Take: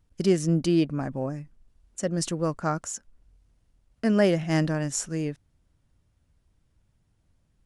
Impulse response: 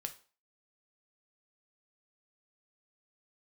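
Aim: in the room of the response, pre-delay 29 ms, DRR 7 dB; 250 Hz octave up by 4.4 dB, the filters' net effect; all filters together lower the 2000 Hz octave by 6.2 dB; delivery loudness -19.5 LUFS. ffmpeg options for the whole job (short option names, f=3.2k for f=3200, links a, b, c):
-filter_complex "[0:a]equalizer=f=250:t=o:g=7,equalizer=f=2k:t=o:g=-8,asplit=2[a][b];[1:a]atrim=start_sample=2205,adelay=29[c];[b][c]afir=irnorm=-1:irlink=0,volume=-5dB[d];[a][d]amix=inputs=2:normalize=0,volume=3dB"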